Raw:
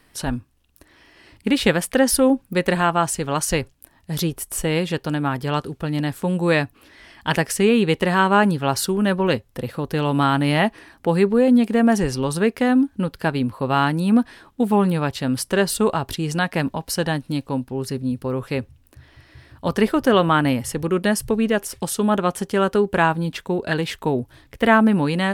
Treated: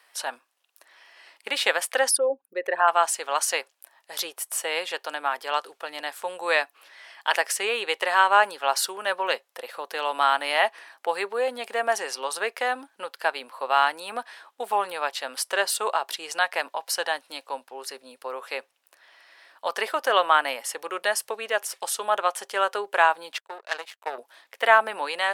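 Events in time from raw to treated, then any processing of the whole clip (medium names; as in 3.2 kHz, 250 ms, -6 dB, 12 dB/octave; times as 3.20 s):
2.09–2.88 s: resonances exaggerated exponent 2
23.38–24.18 s: power-law waveshaper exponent 2
whole clip: high-pass 600 Hz 24 dB/octave; treble shelf 11 kHz -4 dB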